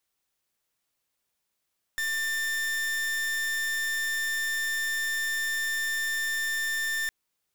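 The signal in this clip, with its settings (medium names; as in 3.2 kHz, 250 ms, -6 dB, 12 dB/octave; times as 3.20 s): pulse 1.79 kHz, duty 40% -29 dBFS 5.11 s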